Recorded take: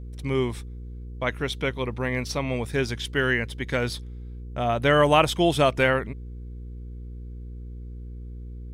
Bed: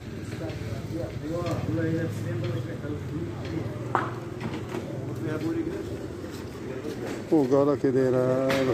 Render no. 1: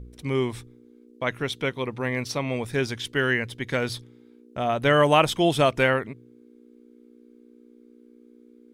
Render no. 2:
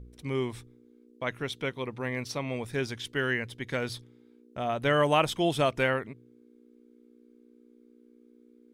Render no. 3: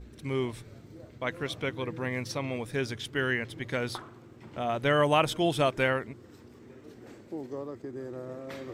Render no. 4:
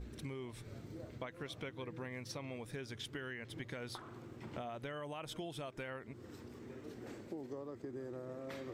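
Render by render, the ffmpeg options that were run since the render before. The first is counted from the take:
-af "bandreject=f=60:t=h:w=4,bandreject=f=120:t=h:w=4,bandreject=f=180:t=h:w=4"
-af "volume=0.531"
-filter_complex "[1:a]volume=0.15[s0];[0:a][s0]amix=inputs=2:normalize=0"
-af "alimiter=limit=0.075:level=0:latency=1:release=191,acompressor=threshold=0.00794:ratio=6"

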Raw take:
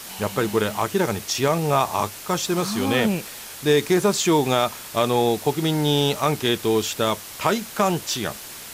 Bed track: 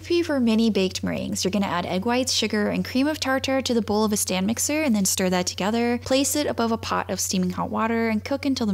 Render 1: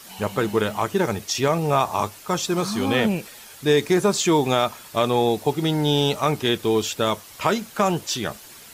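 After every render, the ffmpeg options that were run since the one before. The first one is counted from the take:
-af "afftdn=nr=8:nf=-38"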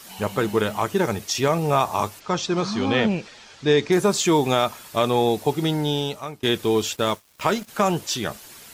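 -filter_complex "[0:a]asplit=3[s0][s1][s2];[s0]afade=t=out:st=2.19:d=0.02[s3];[s1]lowpass=f=6100:w=0.5412,lowpass=f=6100:w=1.3066,afade=t=in:st=2.19:d=0.02,afade=t=out:st=3.91:d=0.02[s4];[s2]afade=t=in:st=3.91:d=0.02[s5];[s3][s4][s5]amix=inputs=3:normalize=0,asplit=3[s6][s7][s8];[s6]afade=t=out:st=6.95:d=0.02[s9];[s7]aeval=exprs='sgn(val(0))*max(abs(val(0))-0.01,0)':c=same,afade=t=in:st=6.95:d=0.02,afade=t=out:st=7.67:d=0.02[s10];[s8]afade=t=in:st=7.67:d=0.02[s11];[s9][s10][s11]amix=inputs=3:normalize=0,asplit=2[s12][s13];[s12]atrim=end=6.43,asetpts=PTS-STARTPTS,afade=t=out:st=5.63:d=0.8:silence=0.0707946[s14];[s13]atrim=start=6.43,asetpts=PTS-STARTPTS,afade=t=in:d=0.004:c=hsin:silence=0.0707946[s15];[s14][s15]concat=n=2:v=0:a=1"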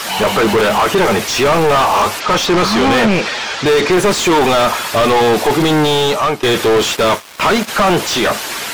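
-filter_complex "[0:a]asplit=2[s0][s1];[s1]highpass=f=720:p=1,volume=70.8,asoftclip=type=tanh:threshold=0.631[s2];[s0][s2]amix=inputs=2:normalize=0,lowpass=f=2300:p=1,volume=0.501"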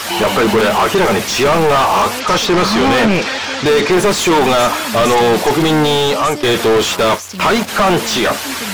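-filter_complex "[1:a]volume=0.562[s0];[0:a][s0]amix=inputs=2:normalize=0"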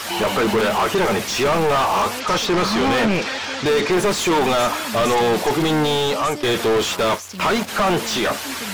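-af "volume=0.501"

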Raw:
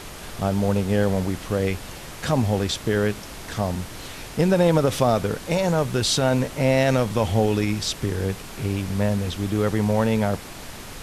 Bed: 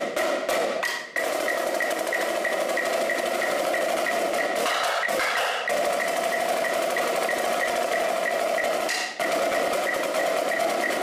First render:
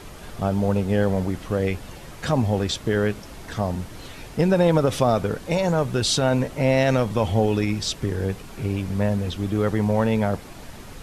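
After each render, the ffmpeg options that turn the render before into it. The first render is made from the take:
-af "afftdn=nr=7:nf=-38"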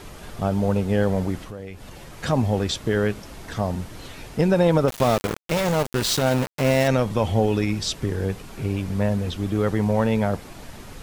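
-filter_complex "[0:a]asettb=1/sr,asplit=3[s0][s1][s2];[s0]atrim=end=1.434[s3];[s1]atrim=start=1.43:end=2.2,asetpts=PTS-STARTPTS,afade=t=in:d=0.004:c=qsin,afade=t=out:st=0.766:d=0.004:c=qsin,acompressor=threshold=0.0158:ratio=3:attack=3.2:release=140:knee=1:detection=peak[s4];[s2]atrim=start=2.196[s5];[s3][s4]acrossfade=d=0.004:c1=hsin:c2=qsin[s6];[s6][s5]acrossfade=d=0.004:c1=qsin:c2=hsin,asettb=1/sr,asplit=3[s7][s8][s9];[s7]atrim=end=4.884[s10];[s8]atrim=start=4.88:end=6.88,asetpts=PTS-STARTPTS,afade=t=in:d=0.004:c=qsin,afade=t=out:st=1.996:d=0.004:c=qsin,aeval=exprs='val(0)*gte(abs(val(0)),0.075)':c=same[s11];[s9]atrim=start=6.876[s12];[s10][s11]acrossfade=d=0.004:c1=hsin:c2=qsin[s13];[s13][s12]acrossfade=d=0.004:c1=qsin:c2=hsin"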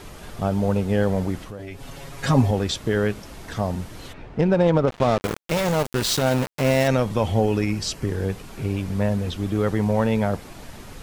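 -filter_complex "[0:a]asettb=1/sr,asplit=3[s0][s1][s2];[s0]atrim=end=1.584[s3];[s1]atrim=start=1.58:end=2.51,asetpts=PTS-STARTPTS,afade=t=in:d=0.004:c=qsin,afade=t=out:st=0.926:d=0.004:c=qsin,aecho=1:1:7.3:0.98,atrim=end_sample=41013[s4];[s2]atrim=start=2.506[s5];[s3][s4]acrossfade=d=0.004:c1=hsin:c2=qsin[s6];[s6][s5]acrossfade=d=0.004:c1=qsin:c2=hsin,asplit=3[s7][s8][s9];[s7]afade=t=out:st=4.12:d=0.02[s10];[s8]adynamicsmooth=sensitivity=1.5:basefreq=2000,afade=t=in:st=4.12:d=0.02,afade=t=out:st=5.21:d=0.02[s11];[s9]afade=t=in:st=5.21:d=0.02[s12];[s10][s11][s12]amix=inputs=3:normalize=0,asettb=1/sr,asplit=3[s13][s14][s15];[s13]atrim=end=7.414[s16];[s14]atrim=start=7.41:end=8.08,asetpts=PTS-STARTPTS,afade=t=in:d=0.004:c=qsin,afade=t=out:st=0.666:d=0.004:c=qsin,bandreject=f=3600:w=6.4[s17];[s15]atrim=start=8.076[s18];[s16][s17]acrossfade=d=0.004:c1=hsin:c2=qsin[s19];[s19][s18]acrossfade=d=0.004:c1=qsin:c2=hsin"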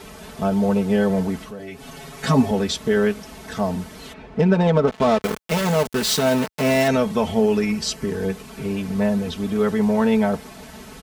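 -af "highpass=62,aecho=1:1:4.6:0.82"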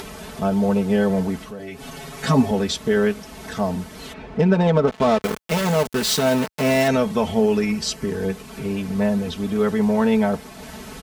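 -af "acompressor=mode=upward:threshold=0.0316:ratio=2.5"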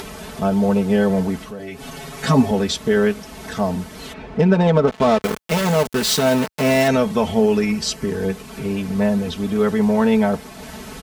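-af "volume=1.26"

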